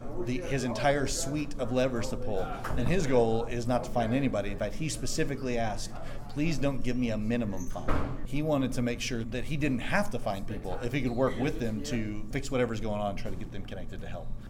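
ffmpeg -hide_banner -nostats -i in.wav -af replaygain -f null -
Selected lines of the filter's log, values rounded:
track_gain = +11.6 dB
track_peak = 0.160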